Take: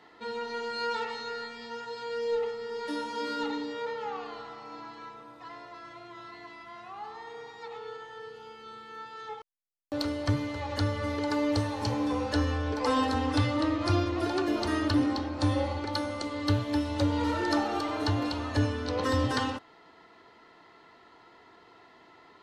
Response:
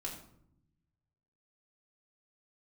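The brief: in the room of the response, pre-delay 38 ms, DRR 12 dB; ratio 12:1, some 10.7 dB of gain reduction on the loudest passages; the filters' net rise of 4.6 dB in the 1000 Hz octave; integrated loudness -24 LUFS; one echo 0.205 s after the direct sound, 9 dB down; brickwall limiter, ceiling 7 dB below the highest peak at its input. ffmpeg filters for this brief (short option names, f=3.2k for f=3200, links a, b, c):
-filter_complex "[0:a]equalizer=f=1k:t=o:g=5.5,acompressor=threshold=-31dB:ratio=12,alimiter=level_in=3.5dB:limit=-24dB:level=0:latency=1,volume=-3.5dB,aecho=1:1:205:0.355,asplit=2[a][b];[1:a]atrim=start_sample=2205,adelay=38[c];[b][c]afir=irnorm=-1:irlink=0,volume=-11.5dB[d];[a][d]amix=inputs=2:normalize=0,volume=11.5dB"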